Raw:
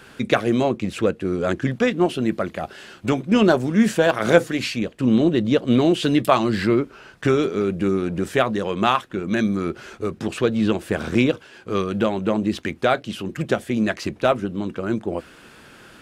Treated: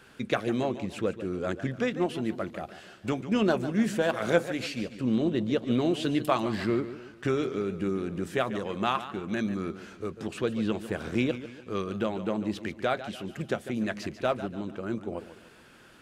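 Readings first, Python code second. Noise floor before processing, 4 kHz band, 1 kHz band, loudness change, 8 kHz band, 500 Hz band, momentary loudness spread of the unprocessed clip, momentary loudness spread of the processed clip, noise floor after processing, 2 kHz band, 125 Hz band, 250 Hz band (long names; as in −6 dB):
−48 dBFS, −8.5 dB, −8.5 dB, −9.0 dB, −9.0 dB, −8.5 dB, 10 LU, 10 LU, −53 dBFS, −8.5 dB, −8.5 dB, −8.5 dB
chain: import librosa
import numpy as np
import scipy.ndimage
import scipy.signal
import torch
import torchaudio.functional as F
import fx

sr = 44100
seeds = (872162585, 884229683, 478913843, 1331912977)

y = fx.echo_warbled(x, sr, ms=145, feedback_pct=42, rate_hz=2.8, cents=109, wet_db=-13)
y = y * librosa.db_to_amplitude(-9.0)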